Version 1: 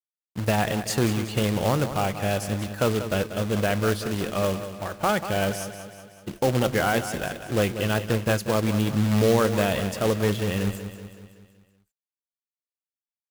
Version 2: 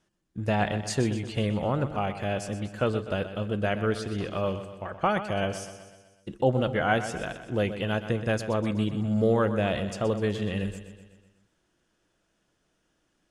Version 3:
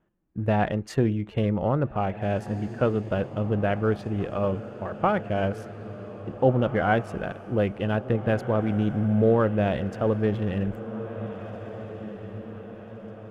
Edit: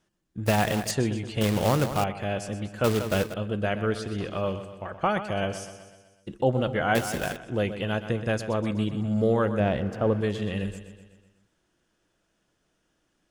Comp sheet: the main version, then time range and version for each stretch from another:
2
0:00.46–0:00.91: punch in from 1
0:01.41–0:02.04: punch in from 1
0:02.84–0:03.34: punch in from 1
0:06.95–0:07.36: punch in from 1
0:09.60–0:10.21: punch in from 3

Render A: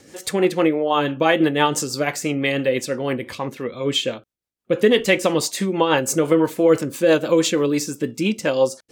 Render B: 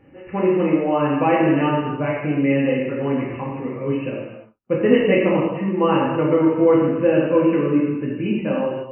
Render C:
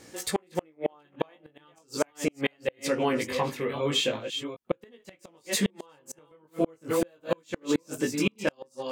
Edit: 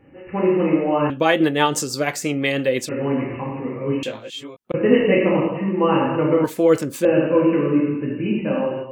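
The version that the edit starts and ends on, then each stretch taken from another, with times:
B
0:01.10–0:02.89: punch in from A
0:04.03–0:04.74: punch in from C
0:06.44–0:07.05: punch in from A

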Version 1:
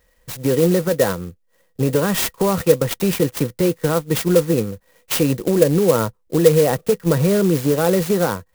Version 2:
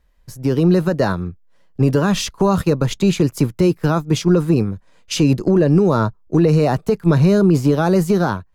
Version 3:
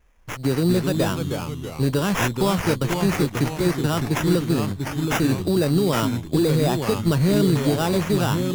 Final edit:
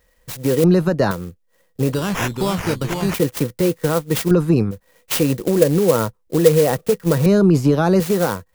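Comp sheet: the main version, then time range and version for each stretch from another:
1
0:00.64–0:01.11: punch in from 2
0:01.92–0:03.14: punch in from 3
0:04.31–0:04.71: punch in from 2
0:07.26–0:08.00: punch in from 2

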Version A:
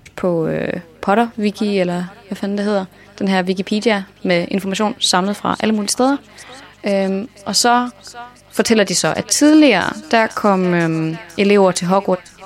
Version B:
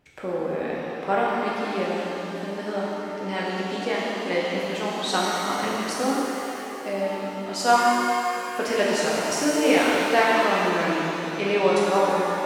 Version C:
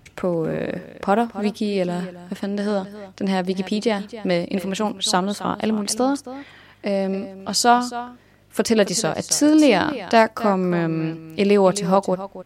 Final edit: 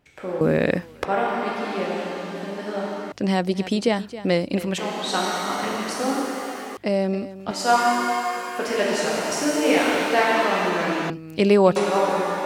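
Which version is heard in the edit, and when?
B
0:00.41–0:01.05: punch in from A
0:03.12–0:04.78: punch in from C
0:06.77–0:07.51: punch in from C
0:11.10–0:11.76: punch in from C

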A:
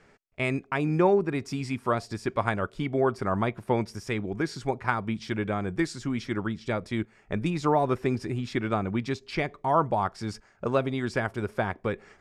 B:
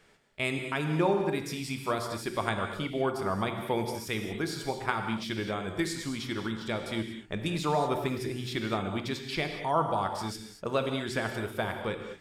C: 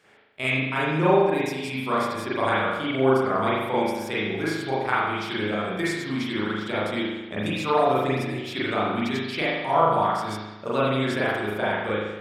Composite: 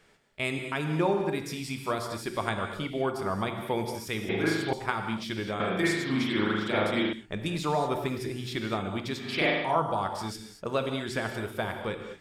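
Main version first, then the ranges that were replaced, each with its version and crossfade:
B
0:04.29–0:04.73: punch in from C
0:05.60–0:07.13: punch in from C
0:09.27–0:09.72: punch in from C, crossfade 0.24 s
not used: A

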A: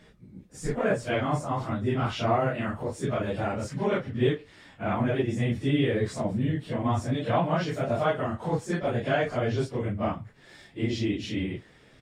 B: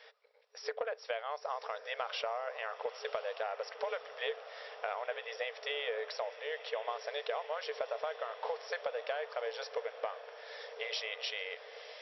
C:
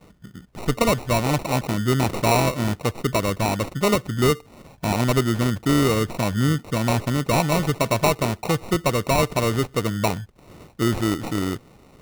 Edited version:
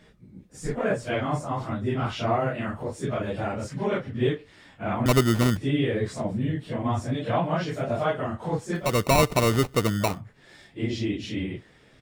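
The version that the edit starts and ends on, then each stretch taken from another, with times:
A
0:05.06–0:05.57: punch in from C
0:08.86–0:10.10: punch in from C, crossfade 0.24 s
not used: B

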